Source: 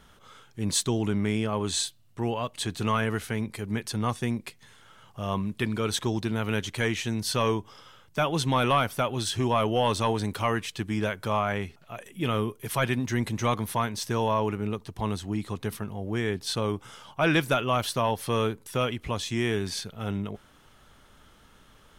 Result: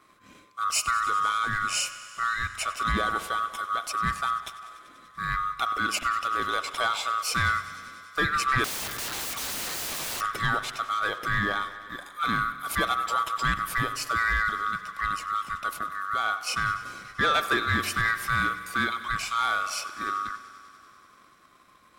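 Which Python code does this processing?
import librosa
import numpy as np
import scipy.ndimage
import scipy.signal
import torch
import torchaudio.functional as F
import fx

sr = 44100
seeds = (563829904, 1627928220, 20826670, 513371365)

p1 = fx.band_swap(x, sr, width_hz=1000)
p2 = fx.leveller(p1, sr, passes=1)
p3 = p2 + fx.echo_thinned(p2, sr, ms=97, feedback_pct=82, hz=180.0, wet_db=-18, dry=0)
p4 = fx.rev_spring(p3, sr, rt60_s=1.3, pass_ms=(43,), chirp_ms=70, drr_db=13.5)
p5 = fx.overflow_wrap(p4, sr, gain_db=25.0, at=(8.64, 10.21))
y = p5 * librosa.db_to_amplitude(-3.0)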